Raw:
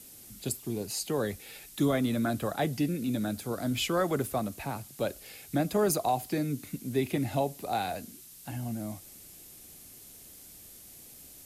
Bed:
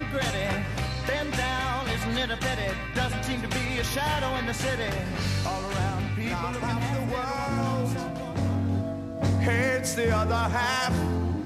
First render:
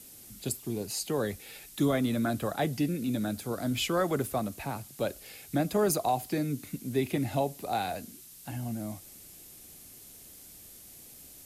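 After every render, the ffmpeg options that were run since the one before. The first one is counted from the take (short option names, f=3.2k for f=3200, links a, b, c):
-af anull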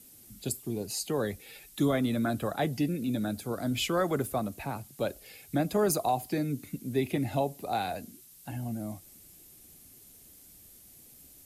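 -af "afftdn=nr=6:nf=-51"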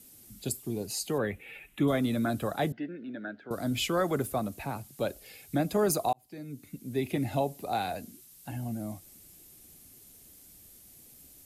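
-filter_complex "[0:a]asettb=1/sr,asplit=3[a][b][c];[a]atrim=end=1.184[d];[b]atrim=start=1.18:end=1.88,asetpts=PTS-STARTPTS,afade=t=in:d=0.004:c=qsin,afade=t=out:st=0.696:d=0.004:c=qsin,highshelf=f=3.5k:t=q:w=3:g=-11.5[e];[c]atrim=start=1.876[f];[d][e]acrossfade=d=0.004:c1=hsin:c2=qsin[g];[g][f]acrossfade=d=0.004:c1=qsin:c2=hsin,asettb=1/sr,asplit=3[h][i][j];[h]atrim=end=2.724[k];[i]atrim=start=2.72:end=3.51,asetpts=PTS-STARTPTS,afade=t=in:d=0.004:c=qsin,afade=t=out:st=0.786:d=0.004:c=qsin,highpass=400,equalizer=f=490:t=q:w=4:g=-6,equalizer=f=800:t=q:w=4:g=-8,equalizer=f=1.1k:t=q:w=4:g=-10,equalizer=f=1.6k:t=q:w=4:g=9,equalizer=f=2.4k:t=q:w=4:g=-9,lowpass=f=2.5k:w=0.5412,lowpass=f=2.5k:w=1.3066[l];[j]atrim=start=3.506[m];[k][l]acrossfade=d=0.004:c1=hsin:c2=qsin[n];[n][m]acrossfade=d=0.004:c1=qsin:c2=hsin,asplit=2[o][p];[o]atrim=end=6.13,asetpts=PTS-STARTPTS,afade=t=out:st=6.126:d=0.004:c=hsin[q];[p]atrim=start=6.13,asetpts=PTS-STARTPTS,afade=t=in:d=1.09[r];[q][r]concat=n=2:v=0:a=1"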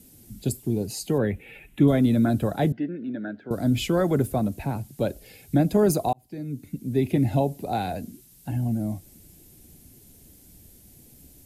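-af "lowshelf=f=450:g=11.5,bandreject=f=1.2k:w=7"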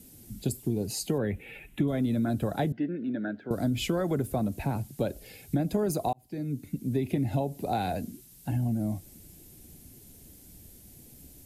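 -af "acompressor=threshold=-24dB:ratio=6"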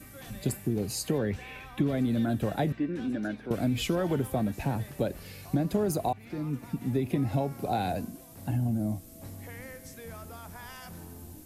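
-filter_complex "[1:a]volume=-20dB[a];[0:a][a]amix=inputs=2:normalize=0"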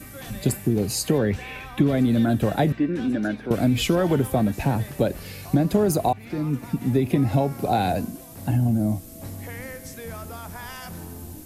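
-af "volume=7.5dB"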